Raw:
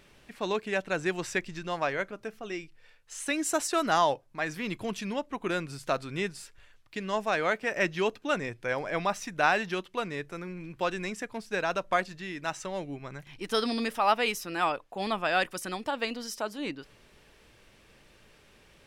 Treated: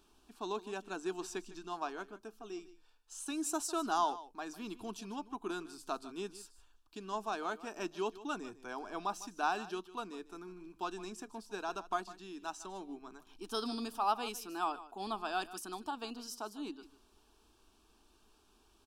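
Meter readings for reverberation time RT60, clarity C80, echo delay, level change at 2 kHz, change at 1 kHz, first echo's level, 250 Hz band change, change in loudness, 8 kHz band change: none, none, 0.152 s, -14.5 dB, -6.5 dB, -16.5 dB, -7.5 dB, -9.0 dB, -6.0 dB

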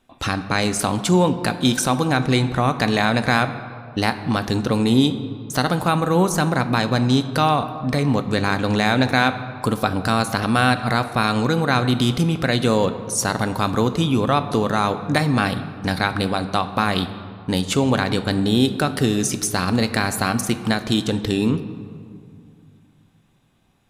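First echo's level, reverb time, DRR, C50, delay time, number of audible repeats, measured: none, 2.3 s, 10.0 dB, 12.0 dB, none, none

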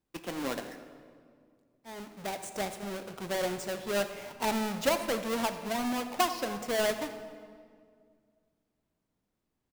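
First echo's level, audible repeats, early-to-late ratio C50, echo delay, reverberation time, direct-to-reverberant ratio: -18.5 dB, 1, 9.5 dB, 86 ms, 2.1 s, 8.0 dB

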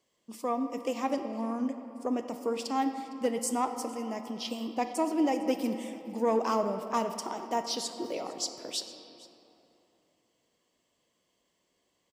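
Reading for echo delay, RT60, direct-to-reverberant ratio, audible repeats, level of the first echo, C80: 0.458 s, 3.0 s, 7.0 dB, 1, -21.0 dB, 9.0 dB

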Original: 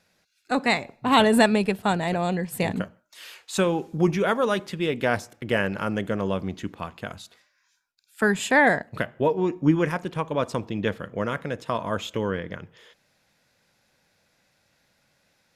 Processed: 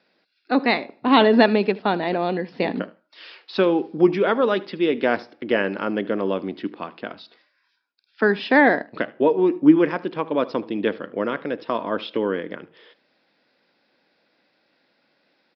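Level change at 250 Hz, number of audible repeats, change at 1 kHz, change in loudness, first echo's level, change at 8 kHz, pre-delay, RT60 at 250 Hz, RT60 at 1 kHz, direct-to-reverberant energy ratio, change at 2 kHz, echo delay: +4.5 dB, 1, +2.0 dB, +3.5 dB, -21.0 dB, under -25 dB, none, none, none, none, +1.5 dB, 76 ms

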